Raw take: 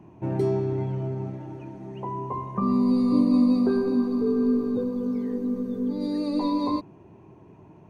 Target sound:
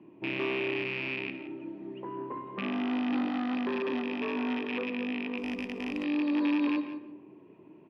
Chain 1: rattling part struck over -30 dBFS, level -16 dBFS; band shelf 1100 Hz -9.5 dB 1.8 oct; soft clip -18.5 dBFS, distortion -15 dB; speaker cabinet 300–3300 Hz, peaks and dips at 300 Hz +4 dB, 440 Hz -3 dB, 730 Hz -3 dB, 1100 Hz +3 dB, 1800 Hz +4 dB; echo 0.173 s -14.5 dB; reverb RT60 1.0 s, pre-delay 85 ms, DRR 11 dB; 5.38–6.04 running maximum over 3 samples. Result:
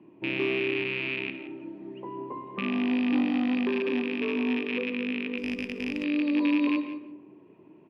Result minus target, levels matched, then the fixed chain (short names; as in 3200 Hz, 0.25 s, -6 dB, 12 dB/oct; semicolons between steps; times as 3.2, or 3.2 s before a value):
soft clip: distortion -7 dB
rattling part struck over -30 dBFS, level -16 dBFS; band shelf 1100 Hz -9.5 dB 1.8 oct; soft clip -26 dBFS, distortion -8 dB; speaker cabinet 300–3300 Hz, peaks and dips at 300 Hz +4 dB, 440 Hz -3 dB, 730 Hz -3 dB, 1100 Hz +3 dB, 1800 Hz +4 dB; echo 0.173 s -14.5 dB; reverb RT60 1.0 s, pre-delay 85 ms, DRR 11 dB; 5.38–6.04 running maximum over 3 samples